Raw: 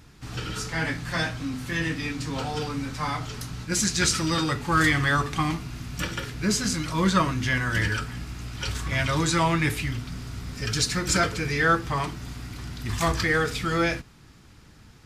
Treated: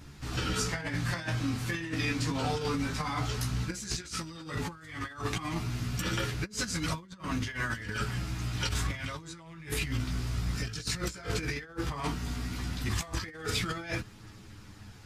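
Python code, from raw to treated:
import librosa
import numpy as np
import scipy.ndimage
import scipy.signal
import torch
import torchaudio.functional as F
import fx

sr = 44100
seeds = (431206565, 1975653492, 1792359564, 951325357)

y = fx.chorus_voices(x, sr, voices=2, hz=0.14, base_ms=14, depth_ms=4.7, mix_pct=45)
y = fx.over_compress(y, sr, threshold_db=-33.0, ratio=-0.5)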